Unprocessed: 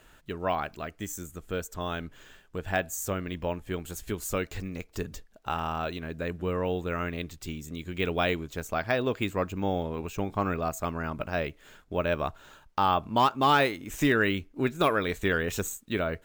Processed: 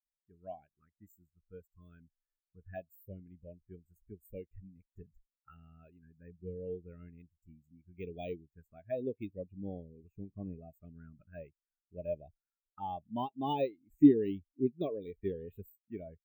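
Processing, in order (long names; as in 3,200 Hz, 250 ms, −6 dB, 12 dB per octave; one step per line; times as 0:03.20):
high-shelf EQ 6,300 Hz +10 dB
phaser swept by the level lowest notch 490 Hz, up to 1,400 Hz, full sweep at −22.5 dBFS
every bin expanded away from the loudest bin 2.5 to 1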